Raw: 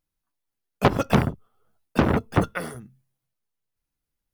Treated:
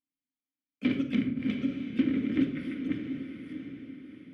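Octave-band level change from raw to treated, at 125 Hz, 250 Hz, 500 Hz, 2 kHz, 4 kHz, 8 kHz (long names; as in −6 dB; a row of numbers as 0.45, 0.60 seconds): −14.0 dB, −0.5 dB, −15.0 dB, −9.5 dB, −7.0 dB, below −20 dB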